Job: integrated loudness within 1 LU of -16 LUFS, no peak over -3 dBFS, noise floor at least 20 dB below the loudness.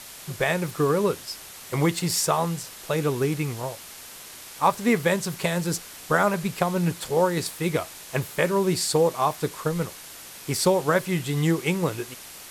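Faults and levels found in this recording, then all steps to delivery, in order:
noise floor -43 dBFS; noise floor target -45 dBFS; loudness -25.0 LUFS; peak level -7.5 dBFS; loudness target -16.0 LUFS
-> noise reduction 6 dB, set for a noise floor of -43 dBFS; trim +9 dB; peak limiter -3 dBFS

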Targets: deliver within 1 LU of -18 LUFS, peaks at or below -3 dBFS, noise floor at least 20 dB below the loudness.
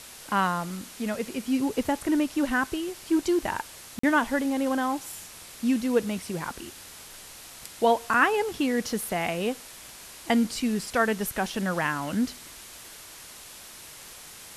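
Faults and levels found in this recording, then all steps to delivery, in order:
dropouts 1; longest dropout 44 ms; noise floor -46 dBFS; noise floor target -47 dBFS; loudness -27.0 LUFS; peak level -8.5 dBFS; loudness target -18.0 LUFS
-> interpolate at 3.99 s, 44 ms; noise reduction 6 dB, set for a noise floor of -46 dBFS; trim +9 dB; peak limiter -3 dBFS

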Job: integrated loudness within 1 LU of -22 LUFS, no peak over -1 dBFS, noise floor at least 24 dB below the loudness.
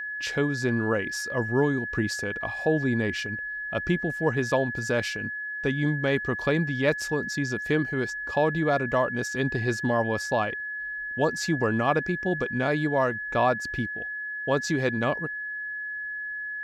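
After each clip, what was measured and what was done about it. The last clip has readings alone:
steady tone 1.7 kHz; tone level -31 dBFS; loudness -27.0 LUFS; peak level -10.0 dBFS; loudness target -22.0 LUFS
-> band-stop 1.7 kHz, Q 30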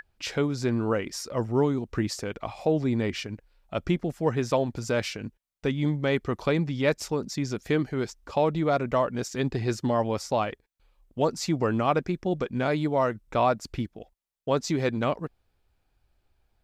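steady tone not found; loudness -27.5 LUFS; peak level -10.5 dBFS; loudness target -22.0 LUFS
-> trim +5.5 dB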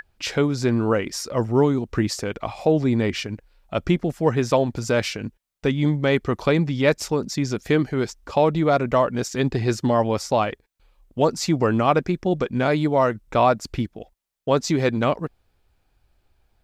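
loudness -22.0 LUFS; peak level -5.0 dBFS; noise floor -68 dBFS

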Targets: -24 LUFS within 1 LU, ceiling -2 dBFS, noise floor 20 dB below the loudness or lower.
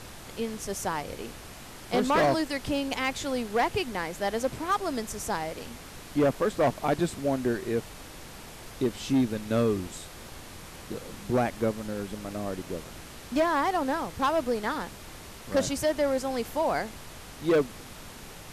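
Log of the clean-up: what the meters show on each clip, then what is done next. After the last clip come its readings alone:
clipped samples 1.0%; clipping level -18.5 dBFS; noise floor -45 dBFS; noise floor target -49 dBFS; loudness -29.0 LUFS; peak level -18.5 dBFS; loudness target -24.0 LUFS
-> clip repair -18.5 dBFS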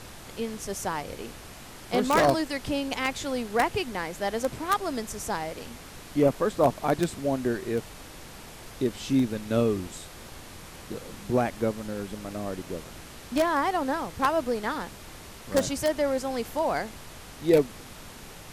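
clipped samples 0.0%; noise floor -45 dBFS; noise floor target -48 dBFS
-> noise print and reduce 6 dB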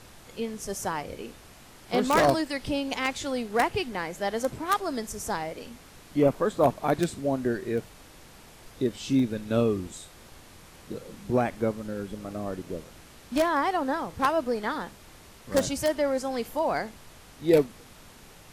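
noise floor -51 dBFS; loudness -28.0 LUFS; peak level -9.5 dBFS; loudness target -24.0 LUFS
-> trim +4 dB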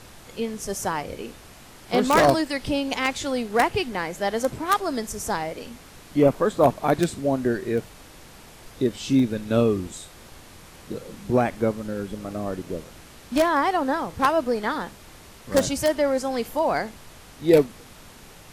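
loudness -24.0 LUFS; peak level -5.5 dBFS; noise floor -47 dBFS

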